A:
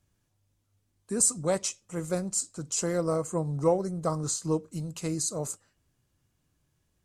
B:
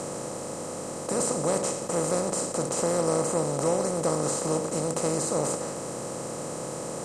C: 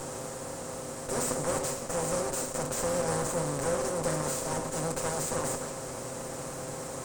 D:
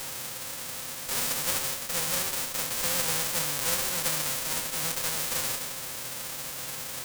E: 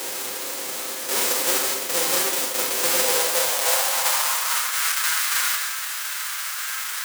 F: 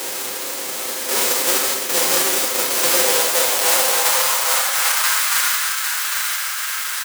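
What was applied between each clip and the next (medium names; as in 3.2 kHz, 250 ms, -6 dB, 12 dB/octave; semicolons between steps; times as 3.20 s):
spectral levelling over time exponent 0.2; treble shelf 4.6 kHz -7 dB; trim -5 dB
comb filter that takes the minimum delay 7.6 ms; trim -2 dB
formants flattened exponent 0.1; trim +1.5 dB
high-pass sweep 350 Hz -> 1.4 kHz, 2.87–4.84 s; reverberation RT60 0.55 s, pre-delay 26 ms, DRR 3.5 dB; trim +5.5 dB
delay 804 ms -5.5 dB; trim +3.5 dB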